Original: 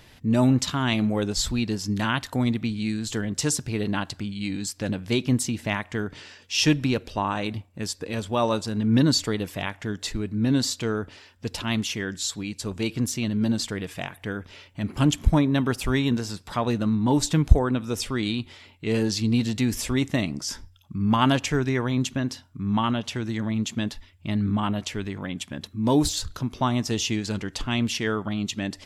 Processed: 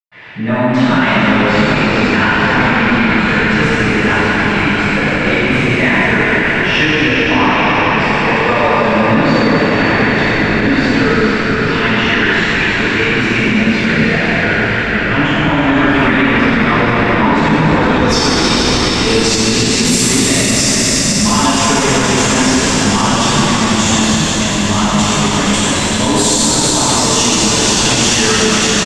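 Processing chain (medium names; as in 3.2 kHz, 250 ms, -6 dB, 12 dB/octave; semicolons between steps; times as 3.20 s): high-pass 480 Hz 6 dB/octave; in parallel at +2 dB: compression, threshold -35 dBFS, peak gain reduction 17.5 dB; on the sum: saturation -18 dBFS, distortion -14 dB; low-pass sweep 2.1 kHz -> 8.2 kHz, 17.60–18.19 s; frequency-shifting echo 470 ms, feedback 62%, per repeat -57 Hz, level -7 dB; reverberation RT60 5.4 s, pre-delay 116 ms; loudness maximiser +33.5 dB; trim -1 dB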